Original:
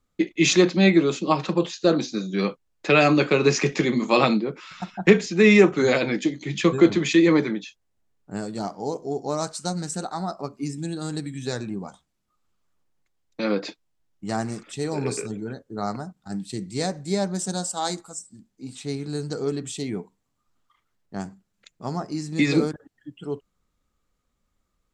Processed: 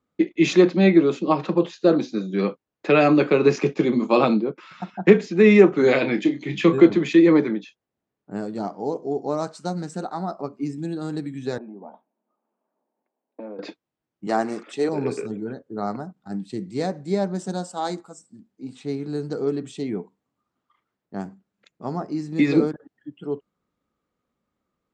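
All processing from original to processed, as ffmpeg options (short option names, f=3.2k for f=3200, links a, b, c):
-filter_complex "[0:a]asettb=1/sr,asplit=3[a][b][c];[a]atrim=end=3.564[d];[b]atrim=start=3.56:end=4.58,asetpts=PTS-STARTPTS,afade=t=in:d=0.004:c=qsin,afade=t=out:st=1.016:d=0.004:c=qsin,agate=range=-33dB:threshold=-28dB:ratio=3:release=100:detection=peak,equalizer=f=1.9k:w=5.4:g=-8.5[e];[c]atrim=start=4.576[f];[d][e]acrossfade=d=0.004:c1=hsin:c2=qsin[g];[g][f]acrossfade=d=0.004:c1=qsin:c2=hsin,asettb=1/sr,asplit=3[h][i][j];[h]atrim=end=5.834[k];[i]atrim=start=5.83:end=6.85,asetpts=PTS-STARTPTS,afade=t=in:d=0.004:c=qsin,afade=t=out:st=1.016:d=0.004:c=qsin,equalizer=f=2.7k:w=1.1:g=5,asplit=2[l][m];[m]adelay=30,volume=-9dB[n];[l][n]amix=inputs=2:normalize=0,atrim=end_sample=44982[o];[j]atrim=start=6.846[p];[k][o]acrossfade=d=0.004:c1=hsin:c2=qsin[q];[q][p]acrossfade=d=0.004:c1=qsin:c2=hsin,asettb=1/sr,asplit=3[r][s][t];[r]atrim=end=11.584[u];[s]atrim=start=11.58:end=13.59,asetpts=PTS-STARTPTS,afade=t=in:d=0.004:c=qsin,afade=t=out:st=2.006:d=0.004:c=qsin,acompressor=threshold=-40dB:ratio=6:attack=3.2:release=140:knee=1:detection=peak,highpass=f=220:w=0.5412,highpass=f=220:w=1.3066,equalizer=f=230:t=q:w=4:g=7,equalizer=f=430:t=q:w=4:g=4,equalizer=f=630:t=q:w=4:g=10,equalizer=f=890:t=q:w=4:g=9,equalizer=f=1.3k:t=q:w=4:g=-6,equalizer=f=2k:t=q:w=4:g=-7,lowpass=f=2.3k:w=0.5412,lowpass=f=2.3k:w=1.3066[v];[t]atrim=start=13.586[w];[u][v]acrossfade=d=0.004:c1=hsin:c2=qsin[x];[x][w]acrossfade=d=0.004:c1=qsin:c2=hsin,asettb=1/sr,asplit=3[y][z][aa];[y]atrim=end=14.274[ab];[z]atrim=start=14.27:end=14.89,asetpts=PTS-STARTPTS,afade=t=in:d=0.004:c=qsin,afade=t=out:st=0.616:d=0.004:c=qsin,highpass=320,acontrast=48[ac];[aa]atrim=start=14.886[ad];[ab][ac]acrossfade=d=0.004:c1=hsin:c2=qsin[ae];[ae][ad]acrossfade=d=0.004:c1=qsin:c2=hsin,highpass=290,aemphasis=mode=reproduction:type=riaa"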